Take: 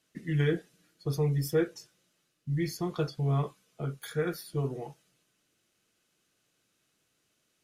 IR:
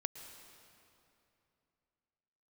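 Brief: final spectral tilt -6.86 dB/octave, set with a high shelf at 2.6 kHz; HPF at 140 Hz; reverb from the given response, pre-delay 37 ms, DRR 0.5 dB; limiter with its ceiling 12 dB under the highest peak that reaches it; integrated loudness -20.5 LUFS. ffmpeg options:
-filter_complex "[0:a]highpass=140,highshelf=f=2600:g=-5,alimiter=level_in=1.68:limit=0.0631:level=0:latency=1,volume=0.596,asplit=2[s0][s1];[1:a]atrim=start_sample=2205,adelay=37[s2];[s1][s2]afir=irnorm=-1:irlink=0,volume=1.06[s3];[s0][s3]amix=inputs=2:normalize=0,volume=6.31"

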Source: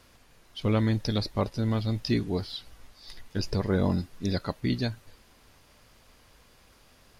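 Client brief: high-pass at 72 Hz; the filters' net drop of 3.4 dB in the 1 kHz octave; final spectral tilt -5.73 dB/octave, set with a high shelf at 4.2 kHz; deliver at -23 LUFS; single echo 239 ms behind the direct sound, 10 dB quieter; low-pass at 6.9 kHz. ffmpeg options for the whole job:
-af "highpass=72,lowpass=6900,equalizer=f=1000:t=o:g=-5,highshelf=f=4200:g=7.5,aecho=1:1:239:0.316,volume=2"

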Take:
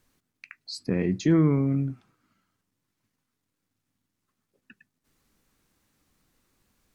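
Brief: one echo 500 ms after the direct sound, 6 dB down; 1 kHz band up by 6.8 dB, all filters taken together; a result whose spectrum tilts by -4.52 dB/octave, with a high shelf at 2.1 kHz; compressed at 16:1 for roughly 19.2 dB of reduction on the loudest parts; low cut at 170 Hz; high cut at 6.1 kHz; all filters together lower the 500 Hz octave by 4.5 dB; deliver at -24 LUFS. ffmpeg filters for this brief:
-af "highpass=170,lowpass=6100,equalizer=f=500:t=o:g=-8.5,equalizer=f=1000:t=o:g=7.5,highshelf=f=2100:g=9,acompressor=threshold=0.0126:ratio=16,aecho=1:1:500:0.501,volume=9.44"

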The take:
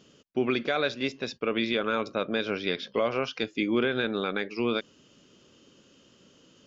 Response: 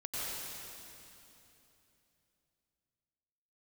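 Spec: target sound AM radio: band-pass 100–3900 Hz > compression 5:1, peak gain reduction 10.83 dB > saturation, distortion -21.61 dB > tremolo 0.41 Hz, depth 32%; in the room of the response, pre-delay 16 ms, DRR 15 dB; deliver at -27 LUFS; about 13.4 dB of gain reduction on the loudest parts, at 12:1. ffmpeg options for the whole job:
-filter_complex "[0:a]acompressor=threshold=0.0178:ratio=12,asplit=2[s0][s1];[1:a]atrim=start_sample=2205,adelay=16[s2];[s1][s2]afir=irnorm=-1:irlink=0,volume=0.119[s3];[s0][s3]amix=inputs=2:normalize=0,highpass=100,lowpass=3900,acompressor=threshold=0.00631:ratio=5,asoftclip=threshold=0.02,tremolo=f=0.41:d=0.32,volume=16.8"

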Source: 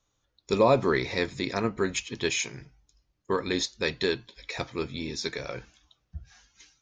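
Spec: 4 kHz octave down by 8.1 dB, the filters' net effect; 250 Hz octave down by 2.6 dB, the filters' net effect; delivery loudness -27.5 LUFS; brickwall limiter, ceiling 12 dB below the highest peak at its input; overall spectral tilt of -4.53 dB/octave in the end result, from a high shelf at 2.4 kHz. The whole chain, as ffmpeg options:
-af "equalizer=f=250:t=o:g=-3.5,highshelf=f=2400:g=-6,equalizer=f=4000:t=o:g=-4.5,volume=2.66,alimiter=limit=0.188:level=0:latency=1"

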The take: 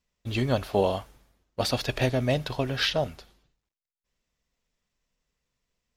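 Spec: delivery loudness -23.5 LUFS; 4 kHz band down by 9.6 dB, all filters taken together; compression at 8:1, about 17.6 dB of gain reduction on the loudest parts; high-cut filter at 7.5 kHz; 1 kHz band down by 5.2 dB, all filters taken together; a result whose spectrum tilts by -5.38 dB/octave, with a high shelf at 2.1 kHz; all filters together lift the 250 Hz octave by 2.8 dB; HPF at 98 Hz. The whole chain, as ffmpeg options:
-af "highpass=98,lowpass=7500,equalizer=f=250:t=o:g=4,equalizer=f=1000:t=o:g=-6.5,highshelf=f=2100:g=-7.5,equalizer=f=4000:t=o:g=-4.5,acompressor=threshold=0.0126:ratio=8,volume=10"

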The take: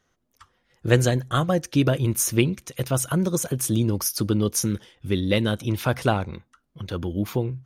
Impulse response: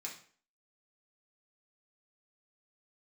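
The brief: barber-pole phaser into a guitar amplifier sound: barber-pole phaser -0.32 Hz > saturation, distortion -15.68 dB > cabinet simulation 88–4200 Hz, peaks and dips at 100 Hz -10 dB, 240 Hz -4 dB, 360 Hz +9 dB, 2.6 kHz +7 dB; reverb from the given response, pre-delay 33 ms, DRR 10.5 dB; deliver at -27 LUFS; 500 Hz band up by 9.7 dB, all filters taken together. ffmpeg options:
-filter_complex "[0:a]equalizer=f=500:t=o:g=8,asplit=2[s0][s1];[1:a]atrim=start_sample=2205,adelay=33[s2];[s1][s2]afir=irnorm=-1:irlink=0,volume=0.355[s3];[s0][s3]amix=inputs=2:normalize=0,asplit=2[s4][s5];[s5]afreqshift=-0.32[s6];[s4][s6]amix=inputs=2:normalize=1,asoftclip=threshold=0.211,highpass=88,equalizer=f=100:t=q:w=4:g=-10,equalizer=f=240:t=q:w=4:g=-4,equalizer=f=360:t=q:w=4:g=9,equalizer=f=2600:t=q:w=4:g=7,lowpass=f=4200:w=0.5412,lowpass=f=4200:w=1.3066,volume=0.708"

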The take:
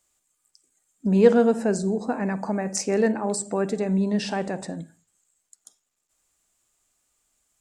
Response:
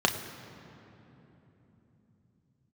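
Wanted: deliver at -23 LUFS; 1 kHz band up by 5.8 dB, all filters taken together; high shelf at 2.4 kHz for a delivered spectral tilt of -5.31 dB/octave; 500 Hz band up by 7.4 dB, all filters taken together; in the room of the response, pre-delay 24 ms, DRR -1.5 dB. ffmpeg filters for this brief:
-filter_complex "[0:a]equalizer=f=500:t=o:g=7.5,equalizer=f=1000:t=o:g=5,highshelf=f=2400:g=-3.5,asplit=2[s0][s1];[1:a]atrim=start_sample=2205,adelay=24[s2];[s1][s2]afir=irnorm=-1:irlink=0,volume=0.266[s3];[s0][s3]amix=inputs=2:normalize=0,volume=0.398"

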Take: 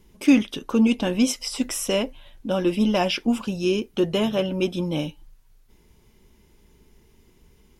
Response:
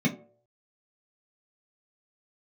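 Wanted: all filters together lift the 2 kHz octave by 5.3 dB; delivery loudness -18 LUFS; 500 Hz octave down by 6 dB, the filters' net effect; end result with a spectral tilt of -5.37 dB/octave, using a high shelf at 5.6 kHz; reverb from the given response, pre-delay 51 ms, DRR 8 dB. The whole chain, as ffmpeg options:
-filter_complex "[0:a]equalizer=f=500:t=o:g=-9,equalizer=f=2000:t=o:g=9,highshelf=f=5600:g=-7.5,asplit=2[s0][s1];[1:a]atrim=start_sample=2205,adelay=51[s2];[s1][s2]afir=irnorm=-1:irlink=0,volume=0.126[s3];[s0][s3]amix=inputs=2:normalize=0,volume=0.944"

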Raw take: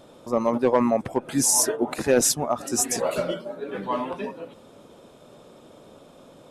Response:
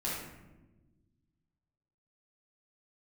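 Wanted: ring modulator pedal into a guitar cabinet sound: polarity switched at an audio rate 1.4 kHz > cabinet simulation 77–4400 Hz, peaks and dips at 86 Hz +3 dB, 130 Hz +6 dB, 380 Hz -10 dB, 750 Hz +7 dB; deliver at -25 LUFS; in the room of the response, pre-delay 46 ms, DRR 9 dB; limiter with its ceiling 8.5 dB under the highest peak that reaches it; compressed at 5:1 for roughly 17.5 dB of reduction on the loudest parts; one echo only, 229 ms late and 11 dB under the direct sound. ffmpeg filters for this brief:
-filter_complex "[0:a]acompressor=threshold=0.0178:ratio=5,alimiter=level_in=2:limit=0.0631:level=0:latency=1,volume=0.501,aecho=1:1:229:0.282,asplit=2[s0][s1];[1:a]atrim=start_sample=2205,adelay=46[s2];[s1][s2]afir=irnorm=-1:irlink=0,volume=0.211[s3];[s0][s3]amix=inputs=2:normalize=0,aeval=exprs='val(0)*sgn(sin(2*PI*1400*n/s))':c=same,highpass=77,equalizer=f=86:t=q:w=4:g=3,equalizer=f=130:t=q:w=4:g=6,equalizer=f=380:t=q:w=4:g=-10,equalizer=f=750:t=q:w=4:g=7,lowpass=f=4400:w=0.5412,lowpass=f=4400:w=1.3066,volume=5.01"

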